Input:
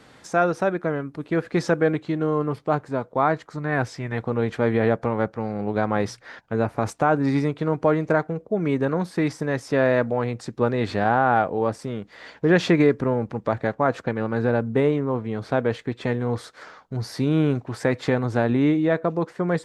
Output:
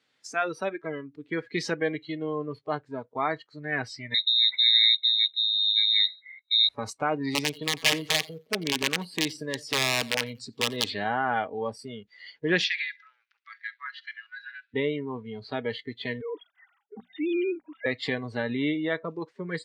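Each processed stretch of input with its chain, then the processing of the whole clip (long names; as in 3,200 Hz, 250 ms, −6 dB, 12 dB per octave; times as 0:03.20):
0:04.14–0:06.69: linear-phase brick-wall band-stop 330–1,600 Hz + voice inversion scrambler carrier 3,900 Hz + one half of a high-frequency compander decoder only
0:07.30–0:10.89: parametric band 2,000 Hz −6 dB 0.54 octaves + wrap-around overflow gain 14 dB + feedback echo with a swinging delay time 89 ms, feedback 40%, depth 92 cents, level −19 dB
0:12.64–0:14.74: elliptic band-pass filter 1,400–5,700 Hz, stop band 70 dB + delay with a high-pass on its return 69 ms, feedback 51%, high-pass 2,700 Hz, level −13 dB
0:16.21–0:17.86: three sine waves on the formant tracks + mains-hum notches 60/120/180/240 Hz
whole clip: meter weighting curve D; noise reduction from a noise print of the clip's start 19 dB; level −7 dB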